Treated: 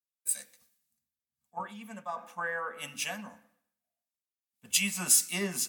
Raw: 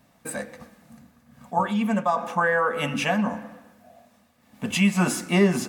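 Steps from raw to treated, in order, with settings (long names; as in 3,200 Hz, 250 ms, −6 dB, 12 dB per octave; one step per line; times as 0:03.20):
first-order pre-emphasis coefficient 0.9
multiband upward and downward expander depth 100%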